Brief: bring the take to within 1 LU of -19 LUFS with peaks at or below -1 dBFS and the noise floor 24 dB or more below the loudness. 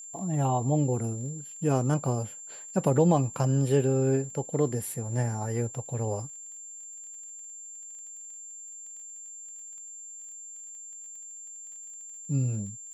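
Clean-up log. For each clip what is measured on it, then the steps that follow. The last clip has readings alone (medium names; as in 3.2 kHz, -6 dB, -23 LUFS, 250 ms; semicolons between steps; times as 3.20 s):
tick rate 24 per s; steady tone 7.3 kHz; tone level -41 dBFS; loudness -28.0 LUFS; peak level -11.0 dBFS; loudness target -19.0 LUFS
-> de-click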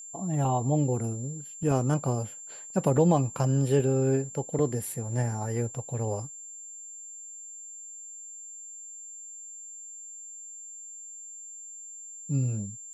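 tick rate 0 per s; steady tone 7.3 kHz; tone level -41 dBFS
-> band-stop 7.3 kHz, Q 30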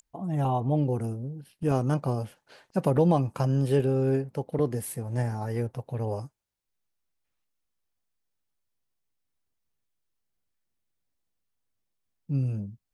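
steady tone not found; loudness -28.0 LUFS; peak level -11.0 dBFS; loudness target -19.0 LUFS
-> trim +9 dB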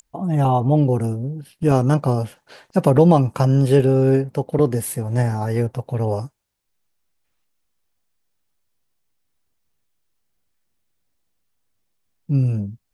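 loudness -19.0 LUFS; peak level -2.0 dBFS; noise floor -71 dBFS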